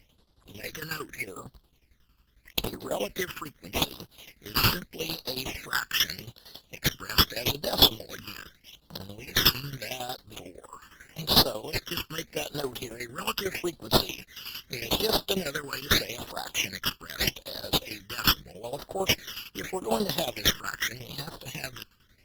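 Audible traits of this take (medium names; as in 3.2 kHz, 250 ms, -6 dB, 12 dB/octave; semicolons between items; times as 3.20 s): aliases and images of a low sample rate 8.7 kHz, jitter 0%; tremolo saw down 11 Hz, depth 80%; phasing stages 12, 0.81 Hz, lowest notch 650–2300 Hz; Opus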